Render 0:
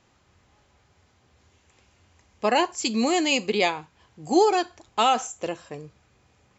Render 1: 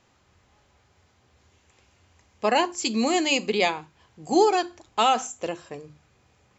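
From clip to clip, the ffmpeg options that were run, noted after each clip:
-af "bandreject=f=50:t=h:w=6,bandreject=f=100:t=h:w=6,bandreject=f=150:t=h:w=6,bandreject=f=200:t=h:w=6,bandreject=f=250:t=h:w=6,bandreject=f=300:t=h:w=6,bandreject=f=350:t=h:w=6"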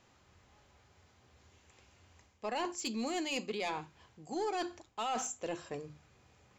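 -af "areverse,acompressor=threshold=-30dB:ratio=5,areverse,asoftclip=type=tanh:threshold=-24.5dB,volume=-2.5dB"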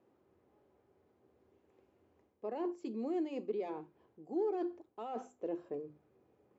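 -af "bandpass=f=370:t=q:w=2.1:csg=0,volume=4dB"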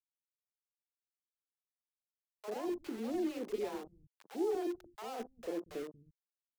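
-filter_complex "[0:a]aeval=exprs='val(0)*gte(abs(val(0)),0.00531)':c=same,acrossover=split=160|690[a][b][c];[b]adelay=40[d];[a]adelay=230[e];[e][d][c]amix=inputs=3:normalize=0,volume=1.5dB"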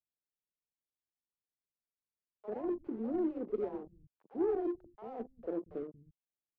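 -af "adynamicsmooth=sensitivity=1:basefreq=570,volume=3dB"

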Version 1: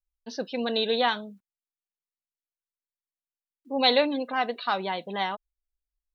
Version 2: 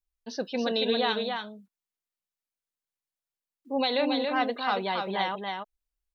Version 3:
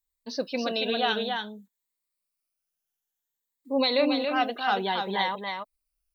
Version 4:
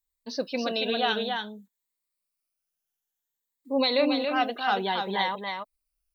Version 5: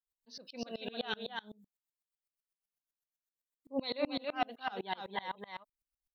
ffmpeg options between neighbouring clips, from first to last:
-af "alimiter=limit=-17dB:level=0:latency=1:release=96,aecho=1:1:278:0.596"
-af "afftfilt=real='re*pow(10,8/40*sin(2*PI*(1*log(max(b,1)*sr/1024/100)/log(2)-(0.57)*(pts-256)/sr)))':imag='im*pow(10,8/40*sin(2*PI*(1*log(max(b,1)*sr/1024/100)/log(2)-(0.57)*(pts-256)/sr)))':win_size=1024:overlap=0.75,crystalizer=i=1:c=0"
-af anull
-af "aeval=exprs='val(0)*pow(10,-29*if(lt(mod(-7.9*n/s,1),2*abs(-7.9)/1000),1-mod(-7.9*n/s,1)/(2*abs(-7.9)/1000),(mod(-7.9*n/s,1)-2*abs(-7.9)/1000)/(1-2*abs(-7.9)/1000))/20)':c=same,volume=-3.5dB"

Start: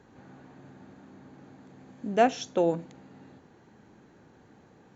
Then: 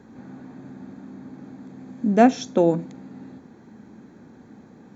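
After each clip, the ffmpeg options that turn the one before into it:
-af "equalizer=f=230:w=1.7:g=10.5,bandreject=f=2.9k:w=5.9,volume=4dB"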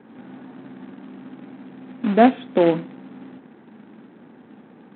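-af "aresample=8000,acrusher=bits=3:mode=log:mix=0:aa=0.000001,aresample=44100,highpass=190,lowpass=2.4k,volume=2dB"

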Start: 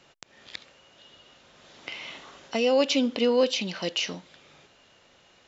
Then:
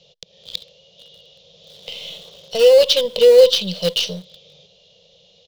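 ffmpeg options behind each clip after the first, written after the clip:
-filter_complex "[0:a]firequalizer=gain_entry='entry(120,0);entry(180,8);entry(260,-27);entry(480,10);entry(820,-11);entry(1500,-24);entry(3300,10);entry(6100,1);entry(8800,-17)':delay=0.05:min_phase=1,asplit=2[a][b];[b]acrusher=bits=4:dc=4:mix=0:aa=0.000001,volume=-9dB[c];[a][c]amix=inputs=2:normalize=0,volume=2.5dB"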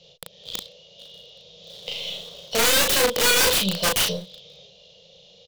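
-filter_complex "[0:a]aeval=exprs='(mod(5.62*val(0)+1,2)-1)/5.62':c=same,asplit=2[a][b];[b]adelay=36,volume=-3dB[c];[a][c]amix=inputs=2:normalize=0"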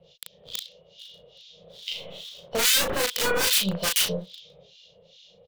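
-filter_complex "[0:a]acrossover=split=1600[a][b];[a]aeval=exprs='val(0)*(1-1/2+1/2*cos(2*PI*2.4*n/s))':c=same[c];[b]aeval=exprs='val(0)*(1-1/2-1/2*cos(2*PI*2.4*n/s))':c=same[d];[c][d]amix=inputs=2:normalize=0,volume=1dB"

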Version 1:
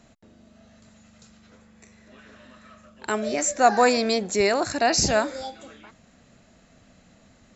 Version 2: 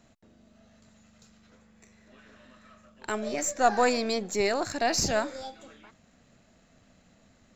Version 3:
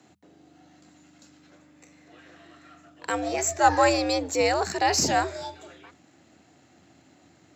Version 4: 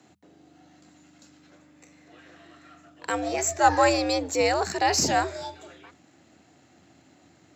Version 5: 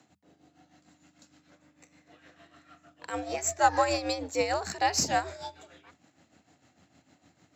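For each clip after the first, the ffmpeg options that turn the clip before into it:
-af "aeval=exprs='if(lt(val(0),0),0.708*val(0),val(0))':c=same,volume=-4dB"
-af "afreqshift=83,bandreject=f=50:t=h:w=6,bandreject=f=100:t=h:w=6,bandreject=f=150:t=h:w=6,bandreject=f=200:t=h:w=6,volume=3.5dB"
-af anull
-af "equalizer=f=360:t=o:w=0.39:g=-6,tremolo=f=6.6:d=0.66,volume=-2dB"

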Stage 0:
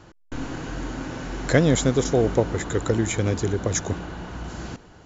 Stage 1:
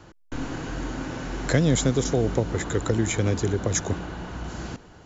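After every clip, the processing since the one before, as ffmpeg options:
-filter_complex "[0:a]acrossover=split=250|3000[a][b][c];[b]acompressor=threshold=-22dB:ratio=6[d];[a][d][c]amix=inputs=3:normalize=0"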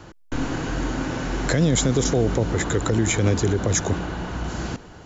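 -af "alimiter=limit=-16dB:level=0:latency=1:release=44,volume=5.5dB"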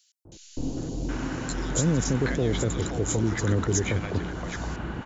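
-filter_complex "[0:a]acrossover=split=670|3800[a][b][c];[a]adelay=250[d];[b]adelay=770[e];[d][e][c]amix=inputs=3:normalize=0,volume=-4dB"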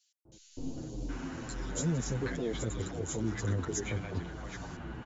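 -filter_complex "[0:a]asplit=2[a][b];[b]adelay=8.2,afreqshift=-1.7[c];[a][c]amix=inputs=2:normalize=1,volume=-6dB"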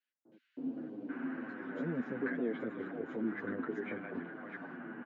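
-af "highpass=f=210:w=0.5412,highpass=f=210:w=1.3066,equalizer=f=250:t=q:w=4:g=7,equalizer=f=910:t=q:w=4:g=-4,equalizer=f=1.6k:t=q:w=4:g=6,lowpass=f=2.2k:w=0.5412,lowpass=f=2.2k:w=1.3066,volume=-2dB"

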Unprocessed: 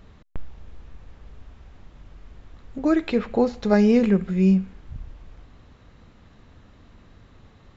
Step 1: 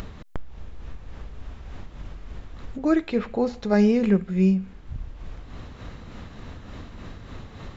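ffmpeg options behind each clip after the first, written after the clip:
-af "acompressor=mode=upward:threshold=-24dB:ratio=2.5,tremolo=f=3.4:d=0.41"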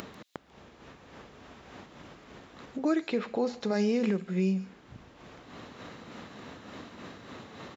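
-filter_complex "[0:a]highpass=220,acrossover=split=3300[a][b];[a]alimiter=limit=-19.5dB:level=0:latency=1:release=165[c];[b]aecho=1:1:143:0.282[d];[c][d]amix=inputs=2:normalize=0"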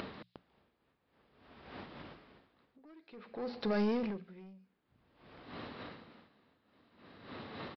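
-af "bandreject=f=60:t=h:w=6,bandreject=f=120:t=h:w=6,bandreject=f=180:t=h:w=6,aresample=11025,asoftclip=type=tanh:threshold=-27.5dB,aresample=44100,aeval=exprs='val(0)*pow(10,-27*(0.5-0.5*cos(2*PI*0.53*n/s))/20)':c=same,volume=1dB"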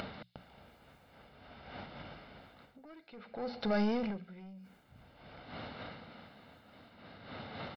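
-af "aecho=1:1:1.4:0.49,areverse,acompressor=mode=upward:threshold=-47dB:ratio=2.5,areverse,volume=1dB"

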